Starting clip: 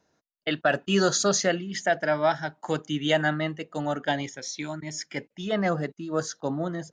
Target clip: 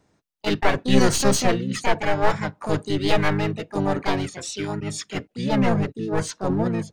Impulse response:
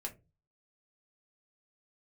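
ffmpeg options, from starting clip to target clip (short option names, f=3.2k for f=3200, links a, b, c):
-filter_complex "[0:a]aeval=exprs='clip(val(0),-1,0.0501)':c=same,lowshelf=f=210:g=10.5,asplit=3[a][b][c];[b]asetrate=29433,aresample=44100,atempo=1.49831,volume=-5dB[d];[c]asetrate=58866,aresample=44100,atempo=0.749154,volume=-2dB[e];[a][d][e]amix=inputs=3:normalize=0"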